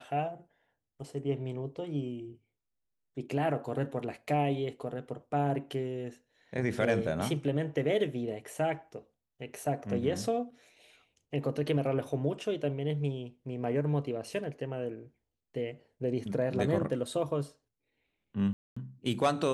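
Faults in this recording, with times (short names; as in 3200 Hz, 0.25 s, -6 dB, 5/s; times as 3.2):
18.53–18.77 gap 0.235 s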